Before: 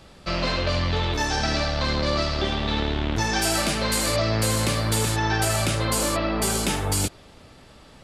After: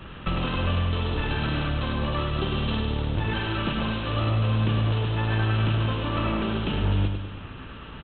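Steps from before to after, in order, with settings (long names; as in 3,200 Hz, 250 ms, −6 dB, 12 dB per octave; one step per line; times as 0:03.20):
lower of the sound and its delayed copy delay 0.71 ms
dynamic equaliser 1,700 Hz, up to −7 dB, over −43 dBFS, Q 1.2
downward compressor 5 to 1, threshold −32 dBFS, peak gain reduction 11 dB
repeating echo 101 ms, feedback 54%, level −6 dB
level +9 dB
A-law companding 64 kbit/s 8,000 Hz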